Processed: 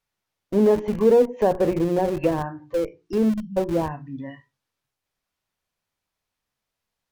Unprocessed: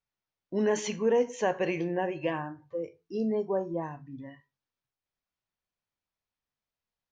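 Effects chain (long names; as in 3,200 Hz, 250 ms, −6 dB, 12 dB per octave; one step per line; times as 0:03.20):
time-frequency box erased 0:03.29–0:03.57, 300–2,700 Hz
treble cut that deepens with the level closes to 740 Hz, closed at −26.5 dBFS
mains-hum notches 60/120/180/240/300/360 Hz
in parallel at −9.5 dB: comparator with hysteresis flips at −34 dBFS
on the sum: level +9 dB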